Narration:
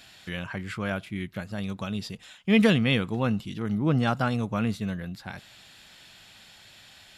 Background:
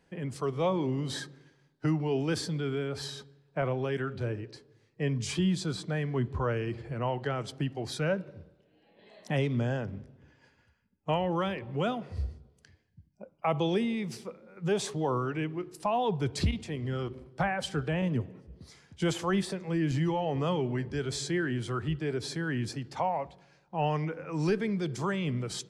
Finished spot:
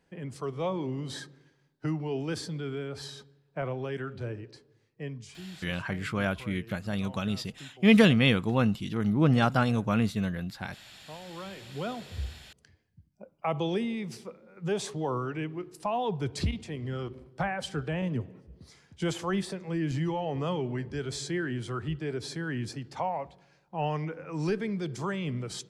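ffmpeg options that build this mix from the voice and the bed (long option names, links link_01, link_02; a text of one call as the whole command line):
ffmpeg -i stem1.wav -i stem2.wav -filter_complex "[0:a]adelay=5350,volume=1dB[link_01];[1:a]volume=12dB,afade=type=out:start_time=4.76:duration=0.57:silence=0.211349,afade=type=in:start_time=11.25:duration=0.97:silence=0.177828[link_02];[link_01][link_02]amix=inputs=2:normalize=0" out.wav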